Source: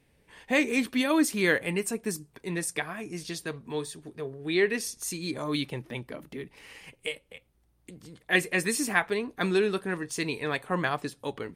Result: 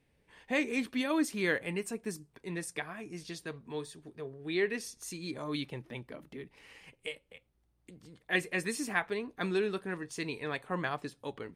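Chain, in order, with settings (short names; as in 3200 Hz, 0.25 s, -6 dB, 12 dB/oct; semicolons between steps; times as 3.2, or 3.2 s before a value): high shelf 8800 Hz -8 dB; gain -6 dB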